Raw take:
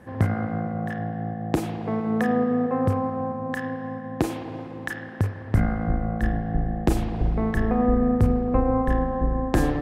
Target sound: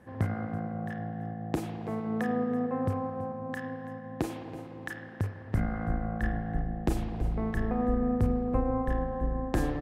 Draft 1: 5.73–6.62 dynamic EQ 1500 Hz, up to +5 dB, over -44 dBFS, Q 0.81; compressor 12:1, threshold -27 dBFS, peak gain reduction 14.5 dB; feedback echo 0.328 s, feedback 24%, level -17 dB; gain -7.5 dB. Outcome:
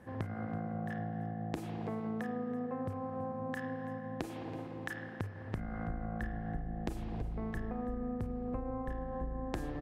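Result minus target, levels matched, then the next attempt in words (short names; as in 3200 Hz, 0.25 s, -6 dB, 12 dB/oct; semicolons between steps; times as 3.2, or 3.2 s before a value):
compressor: peak gain reduction +14.5 dB
5.73–6.62 dynamic EQ 1500 Hz, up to +5 dB, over -44 dBFS, Q 0.81; feedback echo 0.328 s, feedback 24%, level -17 dB; gain -7.5 dB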